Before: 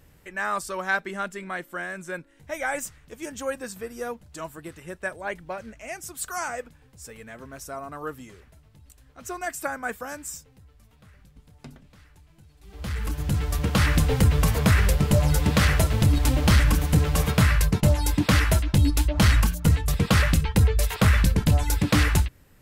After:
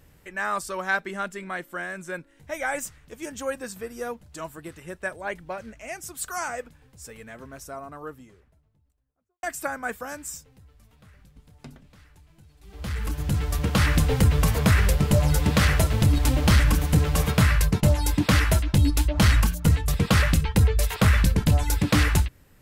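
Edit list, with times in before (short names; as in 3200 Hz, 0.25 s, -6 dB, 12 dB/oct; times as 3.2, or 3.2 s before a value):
7.21–9.43 studio fade out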